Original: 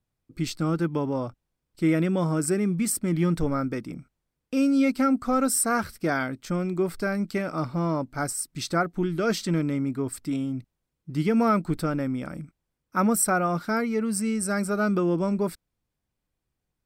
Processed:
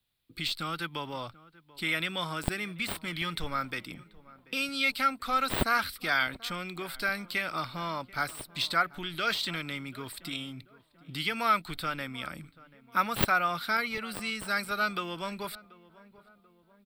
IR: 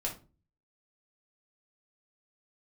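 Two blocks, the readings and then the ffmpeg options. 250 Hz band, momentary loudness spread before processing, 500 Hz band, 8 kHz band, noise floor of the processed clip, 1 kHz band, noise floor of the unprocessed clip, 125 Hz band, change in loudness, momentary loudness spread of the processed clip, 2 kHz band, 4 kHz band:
−15.0 dB, 9 LU, −11.0 dB, −14.0 dB, −63 dBFS, −0.5 dB, −82 dBFS, −12.5 dB, −5.0 dB, 13 LU, +3.5 dB, +7.5 dB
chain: -filter_complex "[0:a]acrossover=split=100|710|2100[link_01][link_02][link_03][link_04];[link_02]acompressor=threshold=-37dB:ratio=5[link_05];[link_01][link_05][link_03][link_04]amix=inputs=4:normalize=0,crystalizer=i=9:c=0,deesser=0.35,highshelf=frequency=4800:width_type=q:width=3:gain=-9,asplit=2[link_06][link_07];[link_07]adelay=736,lowpass=frequency=1300:poles=1,volume=-19.5dB,asplit=2[link_08][link_09];[link_09]adelay=736,lowpass=frequency=1300:poles=1,volume=0.51,asplit=2[link_10][link_11];[link_11]adelay=736,lowpass=frequency=1300:poles=1,volume=0.51,asplit=2[link_12][link_13];[link_13]adelay=736,lowpass=frequency=1300:poles=1,volume=0.51[link_14];[link_06][link_08][link_10][link_12][link_14]amix=inputs=5:normalize=0,volume=-5.5dB"

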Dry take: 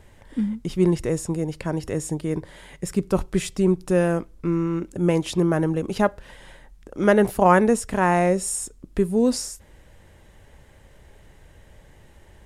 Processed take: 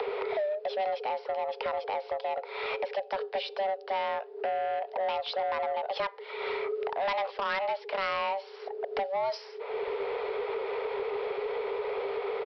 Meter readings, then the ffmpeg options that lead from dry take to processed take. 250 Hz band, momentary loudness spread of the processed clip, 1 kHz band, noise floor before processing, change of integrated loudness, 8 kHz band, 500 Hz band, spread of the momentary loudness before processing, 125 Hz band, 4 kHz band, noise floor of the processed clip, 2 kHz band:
−27.5 dB, 4 LU, −3.5 dB, −52 dBFS, −10.0 dB, below −30 dB, −6.5 dB, 11 LU, below −35 dB, −1.0 dB, −47 dBFS, −5.0 dB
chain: -filter_complex "[0:a]acompressor=mode=upward:threshold=-24dB:ratio=2.5,afreqshift=390,acrossover=split=200|3000[link_01][link_02][link_03];[link_02]acompressor=threshold=-35dB:ratio=4[link_04];[link_01][link_04][link_03]amix=inputs=3:normalize=0,bass=frequency=250:gain=-1,treble=frequency=4000:gain=-14,aresample=11025,asoftclip=type=tanh:threshold=-31.5dB,aresample=44100,volume=7dB"

